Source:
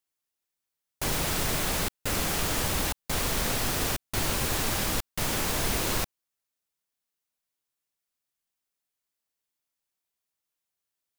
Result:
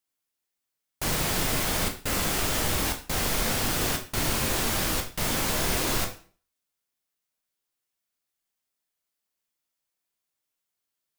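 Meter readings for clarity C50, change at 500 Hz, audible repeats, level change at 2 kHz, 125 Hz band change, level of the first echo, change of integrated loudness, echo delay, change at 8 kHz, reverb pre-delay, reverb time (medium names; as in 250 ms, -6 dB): 10.0 dB, +1.5 dB, no echo, +2.0 dB, +1.0 dB, no echo, +1.5 dB, no echo, +1.5 dB, 6 ms, 0.40 s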